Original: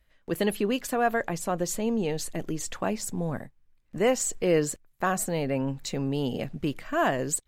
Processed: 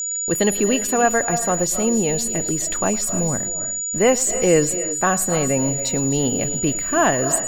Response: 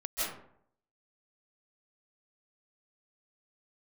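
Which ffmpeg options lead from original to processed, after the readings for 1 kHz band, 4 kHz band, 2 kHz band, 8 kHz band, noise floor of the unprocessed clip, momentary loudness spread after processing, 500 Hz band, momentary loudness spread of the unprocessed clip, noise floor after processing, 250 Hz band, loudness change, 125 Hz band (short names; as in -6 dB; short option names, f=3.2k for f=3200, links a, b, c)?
+7.5 dB, +7.5 dB, +7.5 dB, +16.5 dB, -65 dBFS, 5 LU, +7.5 dB, 8 LU, -26 dBFS, +7.5 dB, +9.5 dB, +7.0 dB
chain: -filter_complex "[0:a]acrusher=bits=8:mix=0:aa=0.000001,aeval=exprs='val(0)+0.0316*sin(2*PI*6900*n/s)':c=same,asplit=2[a][b];[1:a]atrim=start_sample=2205,afade=t=out:st=0.3:d=0.01,atrim=end_sample=13671,adelay=109[c];[b][c]afir=irnorm=-1:irlink=0,volume=-16dB[d];[a][d]amix=inputs=2:normalize=0,volume=7dB"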